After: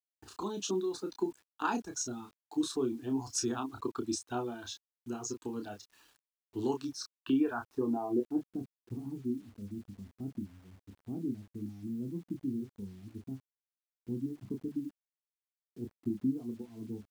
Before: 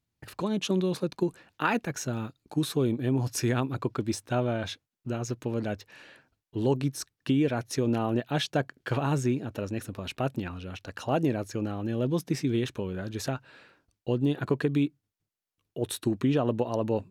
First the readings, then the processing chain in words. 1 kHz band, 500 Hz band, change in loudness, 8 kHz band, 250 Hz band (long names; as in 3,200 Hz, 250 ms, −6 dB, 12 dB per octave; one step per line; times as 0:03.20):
−7.0 dB, −8.5 dB, −7.5 dB, −1.5 dB, −6.0 dB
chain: reverb reduction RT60 1.5 s
high-pass filter 42 Hz 12 dB per octave
high-shelf EQ 6,400 Hz −4 dB
low-pass filter sweep 7,000 Hz → 190 Hz, 0:06.80–0:08.62
phaser with its sweep stopped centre 560 Hz, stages 6
ambience of single reflections 16 ms −15.5 dB, 30 ms −6 dB
bit-depth reduction 10 bits, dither none
level −3.5 dB